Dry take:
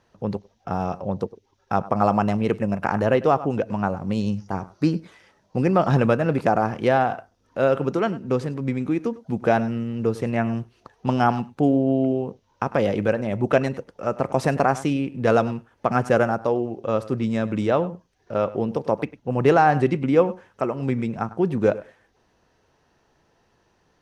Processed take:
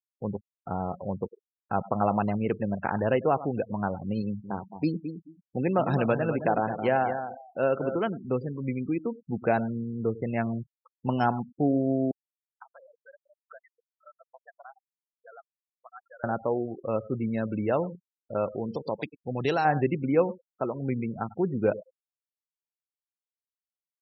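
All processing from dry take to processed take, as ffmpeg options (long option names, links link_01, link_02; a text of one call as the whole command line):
ffmpeg -i in.wav -filter_complex "[0:a]asettb=1/sr,asplit=3[link_01][link_02][link_03];[link_01]atrim=end=4.224[link_04];[link_02]atrim=start=4.22:end=7.96,asetpts=PTS-STARTPTS,afade=type=in:duration=0.004:curve=qsin,afade=type=out:start_time=3.736:duration=0.004:curve=qsin,highpass=frequency=130:poles=1,aecho=1:1:217|434|651:0.355|0.0745|0.0156,atrim=end_sample=164934[link_05];[link_03]atrim=start=7.956[link_06];[link_04][link_05]acrossfade=duration=0.004:curve1=hsin:curve2=qsin[link_07];[link_07][link_06]acrossfade=duration=0.004:curve1=qsin:curve2=hsin,asettb=1/sr,asplit=3[link_08][link_09][link_10];[link_08]atrim=end=12.114[link_11];[link_09]atrim=start=12.11:end=16.24,asetpts=PTS-STARTPTS,afade=type=in:duration=0.004:curve=qsin,afade=type=out:start_time=4.126:duration=0.004:curve=qsin,acompressor=threshold=-36dB:ratio=2.5:attack=3.2:release=140:knee=1:detection=peak,highpass=990[link_12];[link_10]atrim=start=16.236[link_13];[link_11][link_12]acrossfade=duration=0.004:curve1=hsin:curve2=qsin[link_14];[link_14][link_13]acrossfade=duration=0.004:curve1=qsin:curve2=hsin,asettb=1/sr,asplit=3[link_15][link_16][link_17];[link_15]atrim=end=18.544[link_18];[link_16]atrim=start=18.54:end=19.65,asetpts=PTS-STARTPTS,afade=type=in:duration=0.004:curve=qsin,afade=type=out:start_time=1.106:duration=0.004:curve=qsin,equalizer=frequency=4100:width=1:gain=14,acompressor=threshold=-25dB:ratio=1.5:attack=3.2:release=140:knee=1:detection=peak[link_19];[link_17]atrim=start=19.646[link_20];[link_18][link_19]acrossfade=duration=0.004:curve1=hsin:curve2=qsin[link_21];[link_21][link_20]acrossfade=duration=0.004:curve1=qsin:curve2=hsin,highshelf=frequency=3400:gain=4,afftfilt=real='re*gte(hypot(re,im),0.0398)':imag='im*gte(hypot(re,im),0.0398)':win_size=1024:overlap=0.75,bandreject=frequency=1200:width=13,volume=-5.5dB" out.wav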